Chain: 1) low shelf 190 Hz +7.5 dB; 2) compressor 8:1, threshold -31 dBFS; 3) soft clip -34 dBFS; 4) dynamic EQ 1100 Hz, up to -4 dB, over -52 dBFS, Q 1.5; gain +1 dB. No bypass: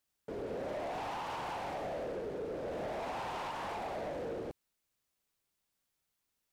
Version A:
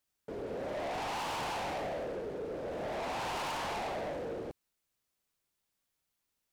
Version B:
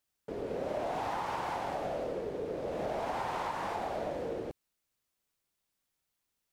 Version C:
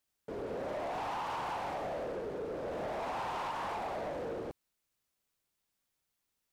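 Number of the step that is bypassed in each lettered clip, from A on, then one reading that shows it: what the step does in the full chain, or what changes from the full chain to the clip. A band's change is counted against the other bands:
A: 2, mean gain reduction 5.0 dB; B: 3, distortion -12 dB; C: 4, 1 kHz band +2.5 dB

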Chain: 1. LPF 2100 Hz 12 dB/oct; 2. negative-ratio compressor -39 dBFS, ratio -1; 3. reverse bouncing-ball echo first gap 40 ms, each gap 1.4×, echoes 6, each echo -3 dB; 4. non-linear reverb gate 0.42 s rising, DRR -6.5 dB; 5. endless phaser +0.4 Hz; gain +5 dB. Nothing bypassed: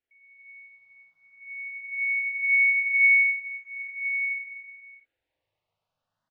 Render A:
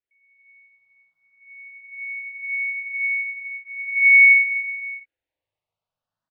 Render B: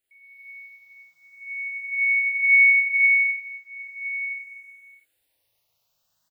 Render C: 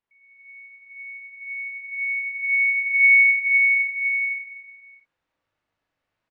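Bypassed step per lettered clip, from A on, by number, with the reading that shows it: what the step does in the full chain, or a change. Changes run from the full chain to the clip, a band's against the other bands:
2, momentary loudness spread change +2 LU; 1, momentary loudness spread change +1 LU; 5, momentary loudness spread change +2 LU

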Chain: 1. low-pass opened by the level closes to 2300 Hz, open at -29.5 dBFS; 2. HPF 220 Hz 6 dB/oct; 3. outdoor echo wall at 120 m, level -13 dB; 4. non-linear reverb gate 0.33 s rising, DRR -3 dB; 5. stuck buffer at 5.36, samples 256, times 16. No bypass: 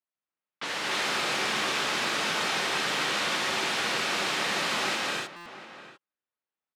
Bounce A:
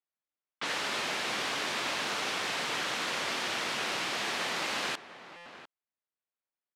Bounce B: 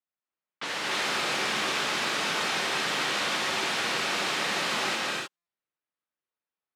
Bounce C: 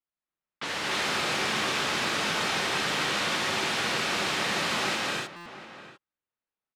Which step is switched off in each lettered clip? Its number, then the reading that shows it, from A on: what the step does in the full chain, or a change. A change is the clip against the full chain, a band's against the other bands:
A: 4, loudness change -4.5 LU; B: 3, momentary loudness spread change -6 LU; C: 2, 125 Hz band +5.0 dB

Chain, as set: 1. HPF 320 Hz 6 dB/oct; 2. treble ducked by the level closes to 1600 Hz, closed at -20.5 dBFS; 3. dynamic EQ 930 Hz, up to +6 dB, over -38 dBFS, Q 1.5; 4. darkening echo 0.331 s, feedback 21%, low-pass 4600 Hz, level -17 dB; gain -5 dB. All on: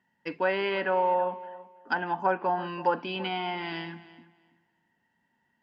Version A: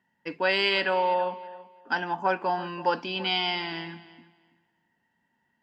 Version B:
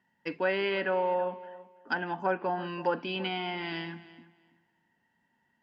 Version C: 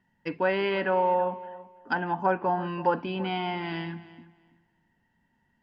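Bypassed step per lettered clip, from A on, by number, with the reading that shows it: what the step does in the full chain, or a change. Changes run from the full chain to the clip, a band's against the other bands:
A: 2, 4 kHz band +10.0 dB; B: 3, 1 kHz band -5.0 dB; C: 1, momentary loudness spread change -2 LU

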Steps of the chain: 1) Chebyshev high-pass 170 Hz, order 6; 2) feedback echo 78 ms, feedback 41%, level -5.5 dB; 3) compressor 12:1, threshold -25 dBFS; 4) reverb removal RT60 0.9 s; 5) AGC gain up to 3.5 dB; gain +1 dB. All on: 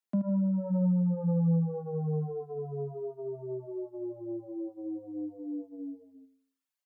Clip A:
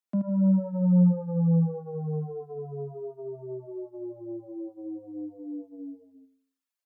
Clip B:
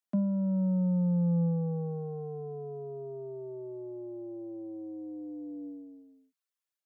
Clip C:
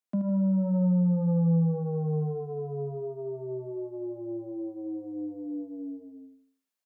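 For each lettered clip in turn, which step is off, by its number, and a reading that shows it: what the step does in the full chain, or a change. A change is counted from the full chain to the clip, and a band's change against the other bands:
3, crest factor change +4.0 dB; 2, momentary loudness spread change +1 LU; 4, loudness change +3.0 LU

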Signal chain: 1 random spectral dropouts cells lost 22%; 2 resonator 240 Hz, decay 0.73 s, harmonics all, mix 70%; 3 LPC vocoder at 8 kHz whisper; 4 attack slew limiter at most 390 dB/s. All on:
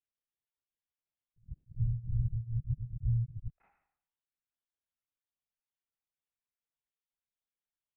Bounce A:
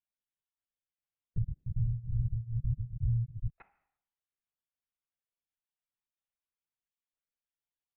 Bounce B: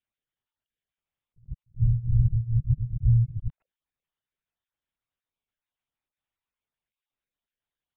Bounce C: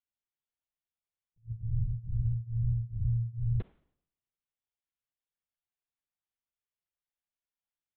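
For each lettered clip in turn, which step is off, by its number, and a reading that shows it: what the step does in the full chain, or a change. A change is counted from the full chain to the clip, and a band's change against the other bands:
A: 4, momentary loudness spread change -9 LU; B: 2, momentary loudness spread change +4 LU; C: 1, crest factor change -3.0 dB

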